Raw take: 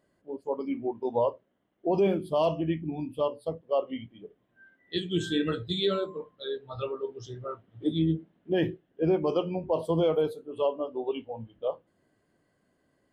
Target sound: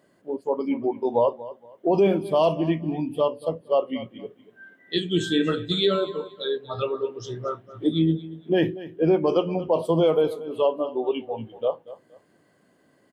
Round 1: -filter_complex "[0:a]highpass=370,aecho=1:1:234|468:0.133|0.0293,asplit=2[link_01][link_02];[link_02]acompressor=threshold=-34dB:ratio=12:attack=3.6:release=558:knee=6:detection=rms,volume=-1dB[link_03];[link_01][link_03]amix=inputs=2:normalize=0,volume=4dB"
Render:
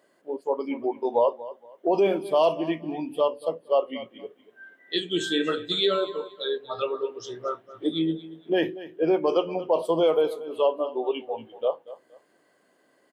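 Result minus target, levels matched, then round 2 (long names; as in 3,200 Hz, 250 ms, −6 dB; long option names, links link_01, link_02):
125 Hz band −10.5 dB
-filter_complex "[0:a]highpass=130,aecho=1:1:234|468:0.133|0.0293,asplit=2[link_01][link_02];[link_02]acompressor=threshold=-34dB:ratio=12:attack=3.6:release=558:knee=6:detection=rms,volume=-1dB[link_03];[link_01][link_03]amix=inputs=2:normalize=0,volume=4dB"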